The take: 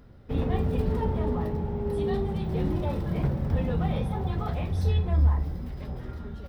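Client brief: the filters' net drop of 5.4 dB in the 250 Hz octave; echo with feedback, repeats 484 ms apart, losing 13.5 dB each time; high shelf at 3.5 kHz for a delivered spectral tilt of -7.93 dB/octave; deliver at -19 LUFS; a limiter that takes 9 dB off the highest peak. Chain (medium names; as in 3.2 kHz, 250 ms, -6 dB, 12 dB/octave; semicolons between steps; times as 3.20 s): peaking EQ 250 Hz -8.5 dB; treble shelf 3.5 kHz -3.5 dB; peak limiter -22 dBFS; feedback delay 484 ms, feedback 21%, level -13.5 dB; trim +13 dB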